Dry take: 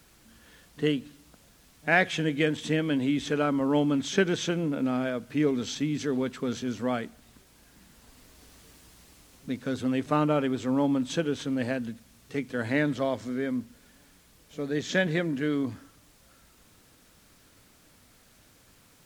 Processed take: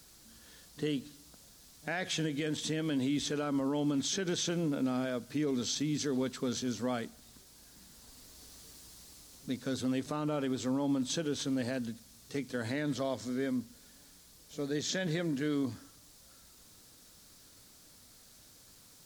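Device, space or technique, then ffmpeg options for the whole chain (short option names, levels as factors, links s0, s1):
over-bright horn tweeter: -af "highshelf=f=3400:t=q:w=1.5:g=6.5,alimiter=limit=0.0944:level=0:latency=1:release=60,volume=0.668"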